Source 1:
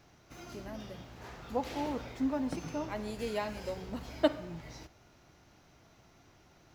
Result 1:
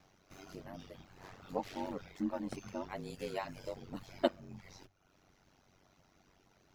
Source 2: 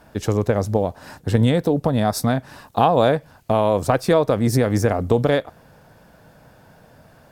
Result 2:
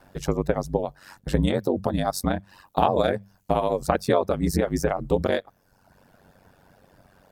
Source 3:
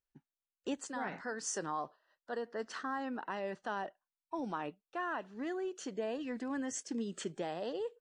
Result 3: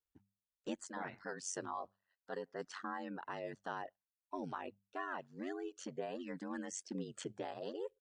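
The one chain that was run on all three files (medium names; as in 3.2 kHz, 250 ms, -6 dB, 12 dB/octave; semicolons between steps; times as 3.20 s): reverb removal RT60 0.84 s; hum notches 50/100/150 Hz; ring modulator 47 Hz; trim -1 dB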